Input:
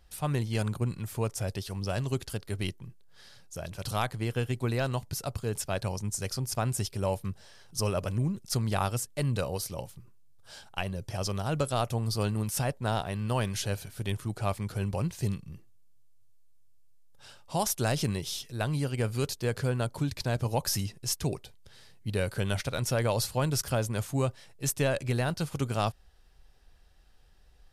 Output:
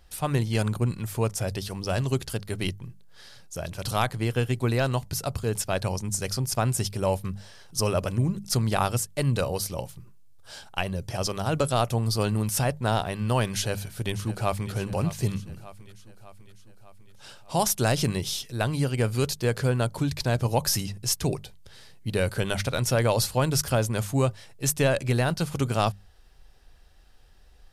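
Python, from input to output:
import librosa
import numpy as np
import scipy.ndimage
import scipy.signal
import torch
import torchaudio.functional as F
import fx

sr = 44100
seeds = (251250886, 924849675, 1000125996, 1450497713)

y = fx.echo_throw(x, sr, start_s=13.54, length_s=1.18, ms=600, feedback_pct=60, wet_db=-14.5)
y = fx.hum_notches(y, sr, base_hz=50, count=4)
y = F.gain(torch.from_numpy(y), 5.0).numpy()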